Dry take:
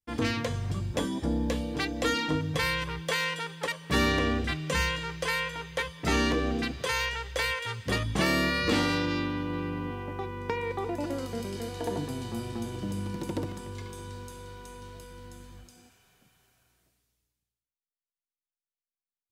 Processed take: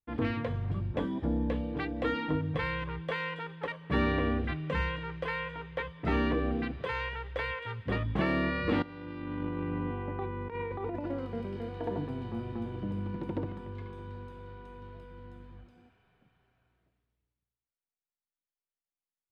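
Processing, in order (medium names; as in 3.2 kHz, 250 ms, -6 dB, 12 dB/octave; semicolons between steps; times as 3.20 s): 8.82–11.08 s: compressor with a negative ratio -33 dBFS, ratio -0.5; distance through air 490 m; trim -1 dB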